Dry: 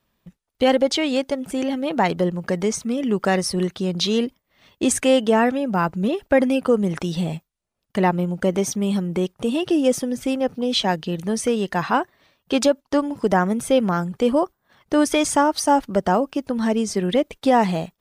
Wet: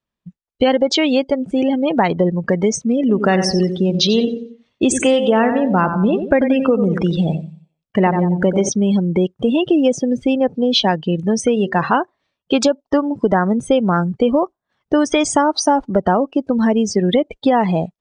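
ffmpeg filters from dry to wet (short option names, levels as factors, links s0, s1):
-filter_complex "[0:a]asettb=1/sr,asplit=3[s0][s1][s2];[s0]atrim=end=3.004[s3];[s1]atrim=start=3:end=8.69,asetpts=PTS-STARTPTS,afade=t=in:d=0.004:c=qsin,afade=t=out:st=5.686:d=0.004:c=qsin,aecho=1:1:90|180|270|360|450:0.355|0.163|0.0751|0.0345|0.0159,atrim=end_sample=250929[s4];[s2]atrim=start=8.686[s5];[s3][s4]acrossfade=d=0.004:c1=hsin:c2=qsin[s6];[s6][s5]acrossfade=d=0.004:c1=qsin:c2=hsin,asettb=1/sr,asplit=3[s7][s8][s9];[s7]atrim=end=11.544[s10];[s8]atrim=start=11.54:end=11.95,asetpts=PTS-STARTPTS,afade=t=in:d=0.004:c=qsin,afade=t=out:st=0.406:d=0.004:c=qsin,bandreject=f=76.22:t=h:w=4,bandreject=f=152.44:t=h:w=4,bandreject=f=228.66:t=h:w=4,bandreject=f=304.88:t=h:w=4,bandreject=f=381.1:t=h:w=4,bandreject=f=457.32:t=h:w=4,bandreject=f=533.54:t=h:w=4,bandreject=f=609.76:t=h:w=4[s11];[s9]atrim=start=11.946[s12];[s10][s11]acrossfade=d=0.004:c1=hsin:c2=qsin[s13];[s13][s12]acrossfade=d=0.004:c1=qsin:c2=hsin,lowpass=f=8300:w=0.5412,lowpass=f=8300:w=1.3066,afftdn=nr=21:nf=-31,acompressor=threshold=0.126:ratio=6,volume=2.37"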